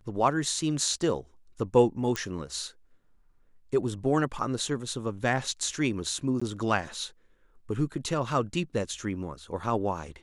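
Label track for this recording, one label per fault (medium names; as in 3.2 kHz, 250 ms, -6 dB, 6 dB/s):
2.160000	2.160000	pop -14 dBFS
6.400000	6.420000	dropout 15 ms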